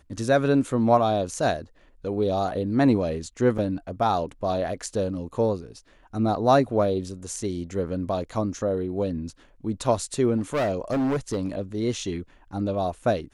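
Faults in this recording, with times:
3.58 s: dropout 4.8 ms
10.37–11.61 s: clipped -21 dBFS

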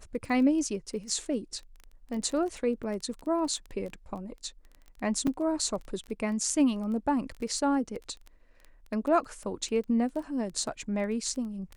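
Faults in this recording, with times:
crackle 14 per s -35 dBFS
5.27 s: dropout 4.5 ms

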